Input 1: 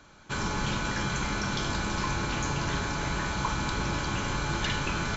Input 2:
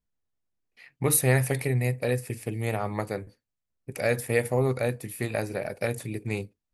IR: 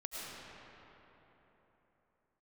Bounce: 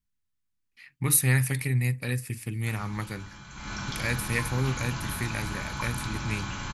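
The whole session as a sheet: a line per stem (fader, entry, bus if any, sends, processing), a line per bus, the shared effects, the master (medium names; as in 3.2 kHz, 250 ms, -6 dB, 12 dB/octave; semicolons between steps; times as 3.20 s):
3.50 s -15.5 dB -> 3.72 s -3.5 dB, 2.35 s, no send, none
+1.5 dB, 0.00 s, no send, peaking EQ 660 Hz -13.5 dB 0.65 oct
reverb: none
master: peaking EQ 450 Hz -10 dB 0.98 oct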